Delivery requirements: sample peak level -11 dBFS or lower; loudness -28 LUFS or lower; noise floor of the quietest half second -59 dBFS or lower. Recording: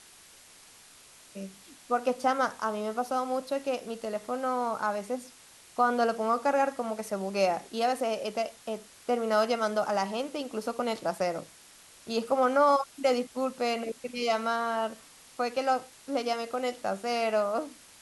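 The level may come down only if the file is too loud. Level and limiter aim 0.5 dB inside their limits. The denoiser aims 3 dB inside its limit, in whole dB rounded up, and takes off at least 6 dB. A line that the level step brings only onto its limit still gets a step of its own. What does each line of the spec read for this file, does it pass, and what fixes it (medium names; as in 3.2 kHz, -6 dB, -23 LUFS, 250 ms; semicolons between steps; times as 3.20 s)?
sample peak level -12.5 dBFS: pass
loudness -29.5 LUFS: pass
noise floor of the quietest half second -54 dBFS: fail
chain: noise reduction 8 dB, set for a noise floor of -54 dBFS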